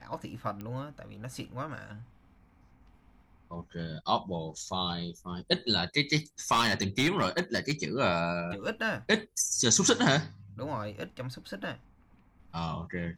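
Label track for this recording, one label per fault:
0.610000	0.610000	click −27 dBFS
6.510000	7.720000	clipping −20.5 dBFS

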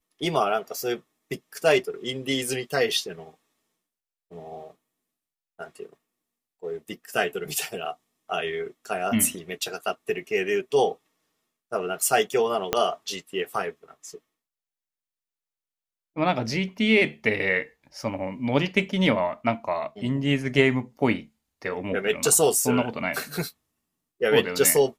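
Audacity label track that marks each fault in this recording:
12.730000	12.730000	click −6 dBFS

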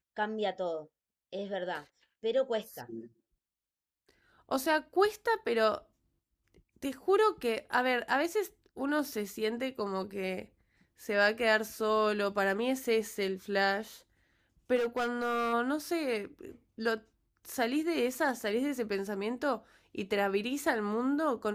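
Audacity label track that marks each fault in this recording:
14.750000	15.540000	clipping −27 dBFS

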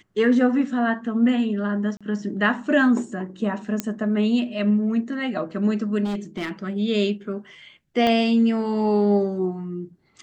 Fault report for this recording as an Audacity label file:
1.970000	2.010000	drop-out 36 ms
3.800000	3.800000	click −9 dBFS
6.040000	6.520000	clipping −23 dBFS
8.070000	8.070000	click −11 dBFS

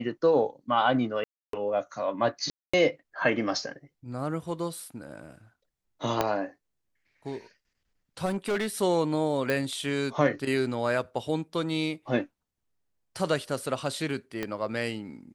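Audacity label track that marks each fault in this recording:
1.240000	1.530000	drop-out 293 ms
2.500000	2.730000	drop-out 235 ms
6.210000	6.210000	click −10 dBFS
8.250000	8.680000	clipping −24.5 dBFS
9.500000	9.500000	click
14.430000	14.430000	click −17 dBFS

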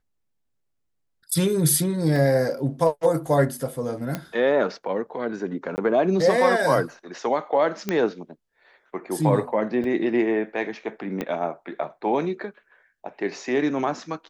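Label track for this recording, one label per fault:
2.160000	2.160000	drop-out 2.2 ms
4.150000	4.150000	click −13 dBFS
5.760000	5.780000	drop-out 19 ms
7.890000	7.890000	click −11 dBFS
9.840000	9.840000	drop-out 2.4 ms
11.210000	11.210000	click −14 dBFS

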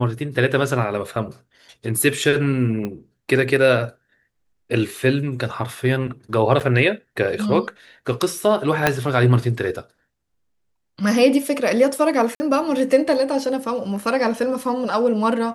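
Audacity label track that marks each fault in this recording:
2.850000	2.850000	click −15 dBFS
6.600000	6.610000	drop-out 7.1 ms
8.870000	8.870000	click −1 dBFS
12.350000	12.400000	drop-out 50 ms

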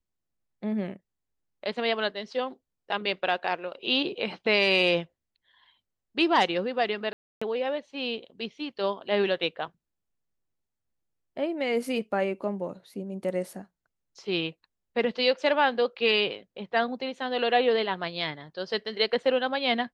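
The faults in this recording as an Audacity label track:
7.130000	7.420000	drop-out 285 ms

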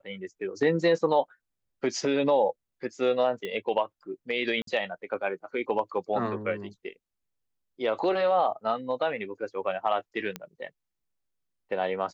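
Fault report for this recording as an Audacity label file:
3.450000	3.450000	click −21 dBFS
4.620000	4.670000	drop-out 53 ms
10.360000	10.360000	click −18 dBFS

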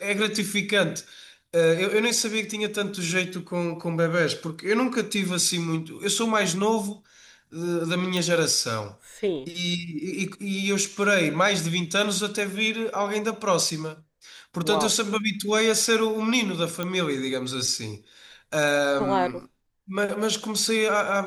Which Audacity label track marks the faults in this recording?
8.170000	8.170000	click
16.830000	16.830000	click −14 dBFS

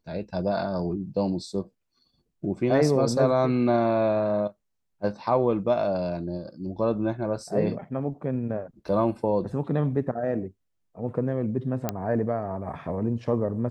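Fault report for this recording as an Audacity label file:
11.890000	11.890000	click −11 dBFS

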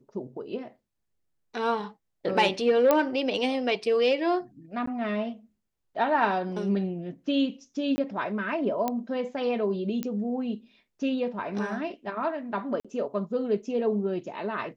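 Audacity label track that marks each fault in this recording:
2.910000	2.910000	click −8 dBFS
4.860000	4.870000	drop-out 14 ms
7.960000	7.980000	drop-out 20 ms
8.880000	8.880000	click −14 dBFS
10.030000	10.030000	click −17 dBFS
12.800000	12.850000	drop-out 46 ms

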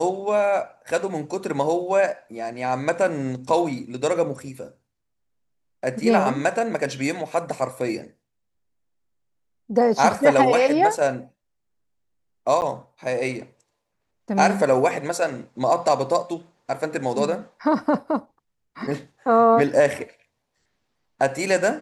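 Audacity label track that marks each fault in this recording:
12.610000	12.620000	drop-out 9.8 ms

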